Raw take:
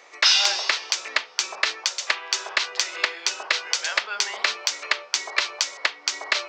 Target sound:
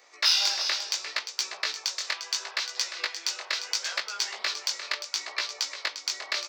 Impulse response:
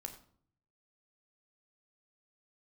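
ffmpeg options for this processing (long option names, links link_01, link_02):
-filter_complex "[0:a]asettb=1/sr,asplit=3[link_01][link_02][link_03];[link_01]atrim=end=1.744[link_04];[link_02]atrim=start=1.74:end=3.51,asetpts=PTS-STARTPTS,afade=type=in:duration=0.004:curve=qsin,afade=type=out:start_time=1.766:duration=0.004:curve=qsin,highpass=frequency=330:poles=1[link_05];[link_03]atrim=start=3.506[link_06];[link_04][link_05]acrossfade=duration=0.004:curve1=hsin:curve2=qsin[link_07];[link_07][link_06]acrossfade=duration=0.004:curve1=qsin:curve2=hsin,asettb=1/sr,asplit=3[link_08][link_09][link_10];[link_08]atrim=end=5.044[link_11];[link_09]atrim=start=5.04:end=5.71,asetpts=PTS-STARTPTS,afade=type=in:duration=0.004:curve=qsin,afade=type=out:start_time=0.666:duration=0.004:curve=qsin,highshelf=frequency=12000:gain=-11[link_12];[link_10]atrim=start=5.706[link_13];[link_11][link_12]acrossfade=duration=0.004:curve1=hsin:curve2=qsin[link_14];[link_14][link_13]acrossfade=duration=0.004:curve1=qsin:curve2=hsin,aecho=1:1:350:0.299,aexciter=amount=1.5:drive=7.9:freq=4100,flanger=delay=15.5:depth=6.4:speed=0.73,volume=-5.5dB"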